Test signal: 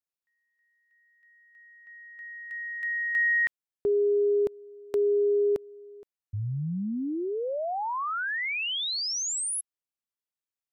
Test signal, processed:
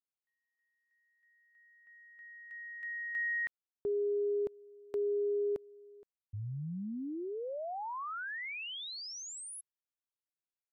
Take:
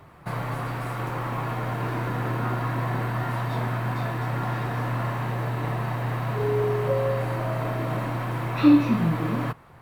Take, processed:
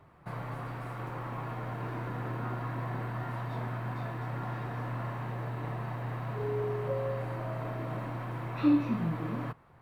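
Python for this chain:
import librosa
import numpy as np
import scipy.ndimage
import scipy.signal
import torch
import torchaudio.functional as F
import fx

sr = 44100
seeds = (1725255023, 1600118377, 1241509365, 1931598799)

y = fx.high_shelf(x, sr, hz=3300.0, db=-7.0)
y = y * librosa.db_to_amplitude(-8.5)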